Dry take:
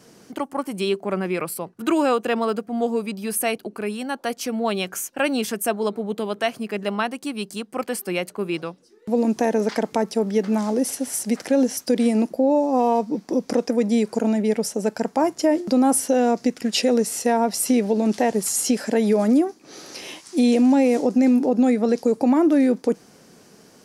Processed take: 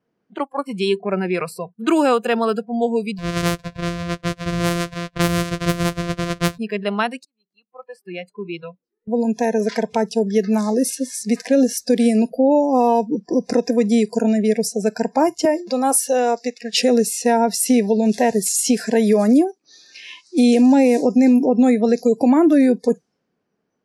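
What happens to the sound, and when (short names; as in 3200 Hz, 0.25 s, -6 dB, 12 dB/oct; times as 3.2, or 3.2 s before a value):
3.18–6.59 sample sorter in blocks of 256 samples
7.25–10.99 fade in equal-power
15.45–16.73 HPF 400 Hz
whole clip: spectral noise reduction 26 dB; low-pass opened by the level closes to 2400 Hz, open at -17.5 dBFS; high shelf 12000 Hz +3.5 dB; gain +3.5 dB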